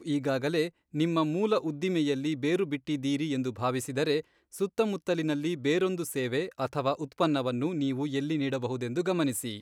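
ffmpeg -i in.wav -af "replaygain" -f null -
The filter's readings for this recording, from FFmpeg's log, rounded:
track_gain = +9.9 dB
track_peak = 0.145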